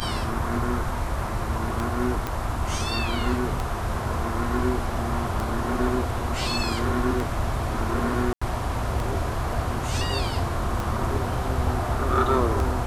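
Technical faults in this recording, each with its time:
scratch tick 33 1/3 rpm −14 dBFS
0:02.27: click −13 dBFS
0:08.33–0:08.41: drop-out 85 ms

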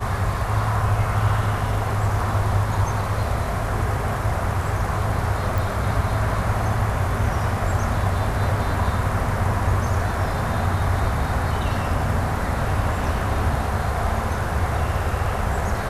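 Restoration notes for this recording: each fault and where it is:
0:05.58: click

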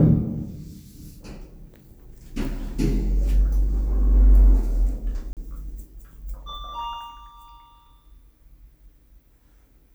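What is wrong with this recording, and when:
0:05.33–0:05.37: drop-out 38 ms

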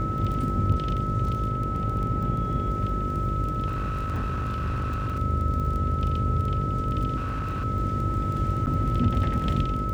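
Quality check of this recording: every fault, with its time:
mains buzz 50 Hz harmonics 12 −31 dBFS
surface crackle 15 per second −31 dBFS
whistle 1,300 Hz −30 dBFS
0:03.66–0:05.18: clipping −24.5 dBFS
0:07.16–0:07.65: clipping −25.5 dBFS
0:08.66–0:08.67: drop-out 9 ms

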